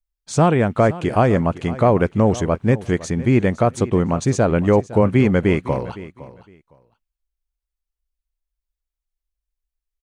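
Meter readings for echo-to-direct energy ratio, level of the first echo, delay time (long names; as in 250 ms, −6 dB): −17.0 dB, −17.0 dB, 510 ms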